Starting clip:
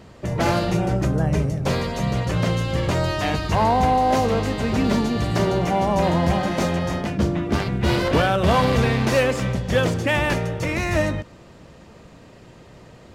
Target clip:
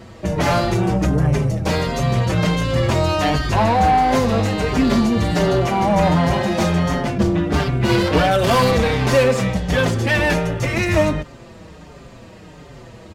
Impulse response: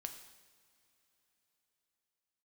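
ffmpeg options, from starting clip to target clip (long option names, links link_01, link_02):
-filter_complex "[0:a]asettb=1/sr,asplit=3[link_01][link_02][link_03];[link_01]atrim=end=8.314[link_04];[link_02]atrim=start=8.31:end=8.71,asetpts=PTS-STARTPTS,afade=type=in:duration=0.004:curve=qsin,afade=type=out:start_time=0.396:duration=0.004:curve=qsin,aemphasis=mode=production:type=cd[link_05];[link_03]atrim=start=8.706[link_06];[link_04][link_05]acrossfade=duration=0.004:curve1=hsin:curve2=qsin[link_07];[link_07][link_06]acrossfade=duration=0.004:curve1=qsin:curve2=hsin,asoftclip=type=tanh:threshold=-16dB,asplit=2[link_08][link_09];[link_09]adelay=5.5,afreqshift=-1.4[link_10];[link_08][link_10]amix=inputs=2:normalize=1,volume=8.5dB"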